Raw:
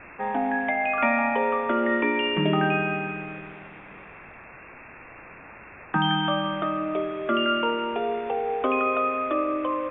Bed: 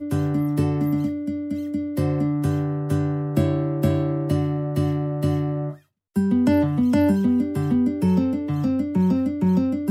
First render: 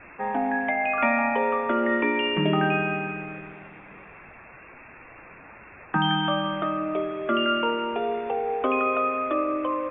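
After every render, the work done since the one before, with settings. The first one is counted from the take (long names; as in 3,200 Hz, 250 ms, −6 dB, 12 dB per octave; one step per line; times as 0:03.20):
broadband denoise 6 dB, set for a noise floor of −46 dBFS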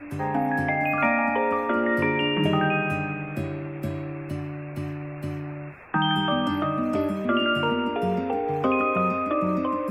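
mix in bed −10 dB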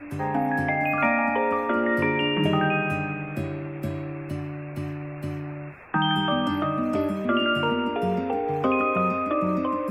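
no processing that can be heard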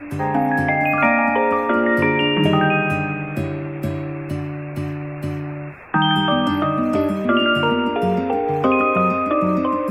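level +6 dB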